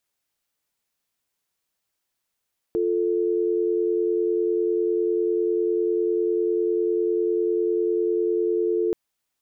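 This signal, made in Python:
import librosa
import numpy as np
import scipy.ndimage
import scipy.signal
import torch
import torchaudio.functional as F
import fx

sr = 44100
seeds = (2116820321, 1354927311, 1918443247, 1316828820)

y = fx.call_progress(sr, length_s=6.18, kind='dial tone', level_db=-22.5)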